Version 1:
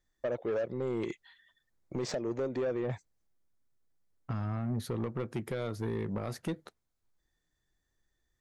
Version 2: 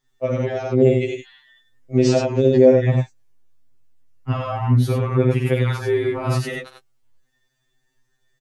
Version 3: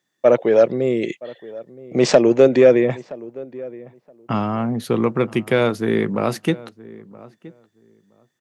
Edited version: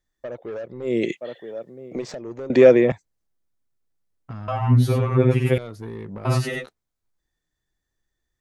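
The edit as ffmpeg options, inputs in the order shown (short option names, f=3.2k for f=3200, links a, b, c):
-filter_complex "[2:a]asplit=2[a][b];[1:a]asplit=2[c][d];[0:a]asplit=5[e][f][g][h][i];[e]atrim=end=0.97[j];[a]atrim=start=0.81:end=2.03[k];[f]atrim=start=1.87:end=2.502[l];[b]atrim=start=2.498:end=2.922[m];[g]atrim=start=2.918:end=4.482[n];[c]atrim=start=4.478:end=5.582[o];[h]atrim=start=5.578:end=6.252[p];[d]atrim=start=6.248:end=6.662[q];[i]atrim=start=6.658[r];[j][k]acrossfade=d=0.16:c1=tri:c2=tri[s];[s][l]acrossfade=d=0.16:c1=tri:c2=tri[t];[t][m]acrossfade=d=0.004:c1=hsin:c2=hsin[u];[u][n]acrossfade=d=0.004:c1=hsin:c2=hsin[v];[v][o]acrossfade=d=0.004:c1=hsin:c2=hsin[w];[w][p]acrossfade=d=0.004:c1=hsin:c2=hsin[x];[x][q]acrossfade=d=0.004:c1=hsin:c2=hsin[y];[y][r]acrossfade=d=0.004:c1=hsin:c2=hsin"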